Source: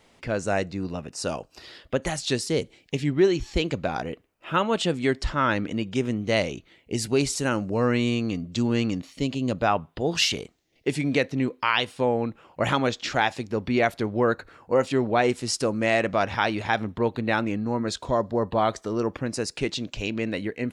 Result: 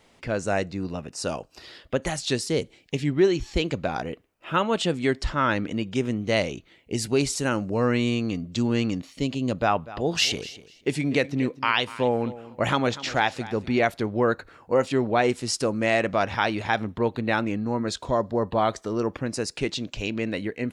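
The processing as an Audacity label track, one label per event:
9.580000	13.800000	feedback echo 0.245 s, feedback 18%, level -17 dB

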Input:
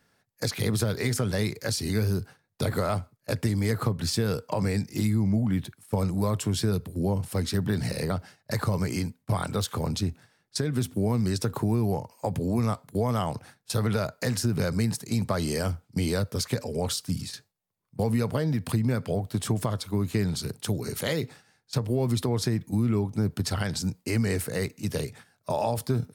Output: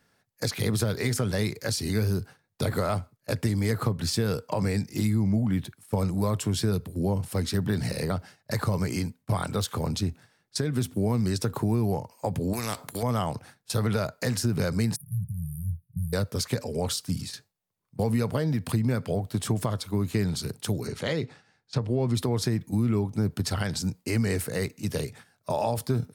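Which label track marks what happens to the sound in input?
12.530000	13.030000	spectral compressor 2:1
14.960000	16.130000	brick-wall FIR band-stop 180–9200 Hz
20.870000	22.150000	air absorption 82 m

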